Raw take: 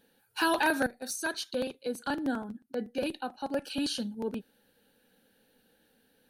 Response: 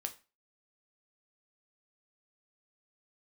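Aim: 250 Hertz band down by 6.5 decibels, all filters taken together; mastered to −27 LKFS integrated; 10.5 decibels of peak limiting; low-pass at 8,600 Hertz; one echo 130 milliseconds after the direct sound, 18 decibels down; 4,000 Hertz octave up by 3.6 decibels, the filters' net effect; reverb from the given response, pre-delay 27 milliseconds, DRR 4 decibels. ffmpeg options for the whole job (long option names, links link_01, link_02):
-filter_complex "[0:a]lowpass=8600,equalizer=frequency=250:width_type=o:gain=-8,equalizer=frequency=4000:width_type=o:gain=4.5,alimiter=level_in=1.5dB:limit=-24dB:level=0:latency=1,volume=-1.5dB,aecho=1:1:130:0.126,asplit=2[link_01][link_02];[1:a]atrim=start_sample=2205,adelay=27[link_03];[link_02][link_03]afir=irnorm=-1:irlink=0,volume=-3dB[link_04];[link_01][link_04]amix=inputs=2:normalize=0,volume=8.5dB"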